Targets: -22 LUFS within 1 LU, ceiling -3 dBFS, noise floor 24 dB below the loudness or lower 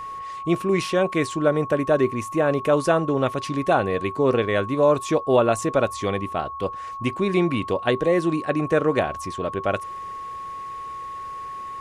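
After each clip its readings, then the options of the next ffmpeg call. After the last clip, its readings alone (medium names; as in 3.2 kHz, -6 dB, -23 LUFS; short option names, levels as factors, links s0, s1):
steady tone 1.1 kHz; tone level -31 dBFS; loudness -22.5 LUFS; peak level -5.5 dBFS; loudness target -22.0 LUFS
-> -af "bandreject=f=1100:w=30"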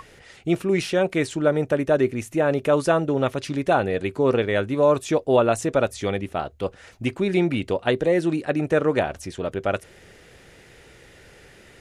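steady tone not found; loudness -23.0 LUFS; peak level -5.5 dBFS; loudness target -22.0 LUFS
-> -af "volume=1.12"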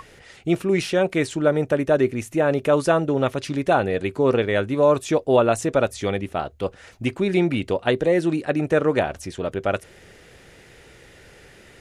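loudness -22.0 LUFS; peak level -4.5 dBFS; noise floor -49 dBFS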